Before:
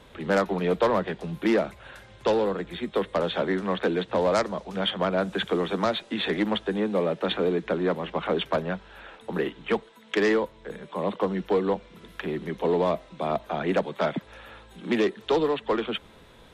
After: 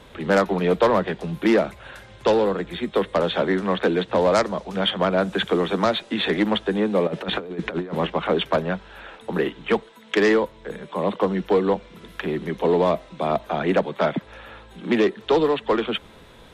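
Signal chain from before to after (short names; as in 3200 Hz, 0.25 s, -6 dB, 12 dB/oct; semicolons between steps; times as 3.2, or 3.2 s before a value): 7.07–8.07 negative-ratio compressor -30 dBFS, ratio -0.5; 13.72–15.36 high shelf 5600 Hz -6.5 dB; gain +4.5 dB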